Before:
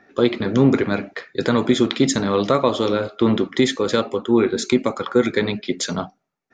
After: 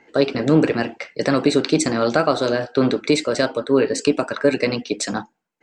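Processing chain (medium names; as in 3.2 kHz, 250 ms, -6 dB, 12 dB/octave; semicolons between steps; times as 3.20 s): wide varispeed 1.16×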